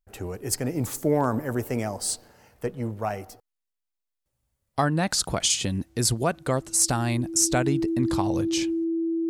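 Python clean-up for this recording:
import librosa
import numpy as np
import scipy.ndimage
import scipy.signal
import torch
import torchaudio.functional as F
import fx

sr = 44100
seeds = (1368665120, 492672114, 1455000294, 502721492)

y = fx.fix_declip(x, sr, threshold_db=-11.5)
y = fx.notch(y, sr, hz=330.0, q=30.0)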